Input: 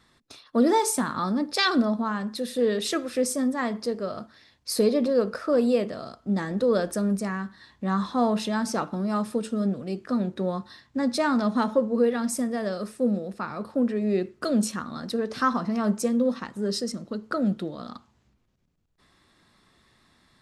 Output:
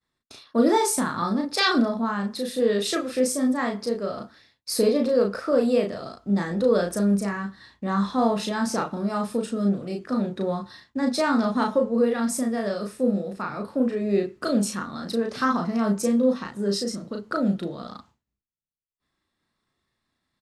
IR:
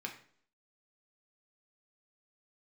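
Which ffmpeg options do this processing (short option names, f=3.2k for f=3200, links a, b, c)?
-filter_complex "[0:a]agate=range=-33dB:threshold=-50dB:ratio=3:detection=peak,asplit=2[a][b];[b]adelay=35,volume=-3dB[c];[a][c]amix=inputs=2:normalize=0"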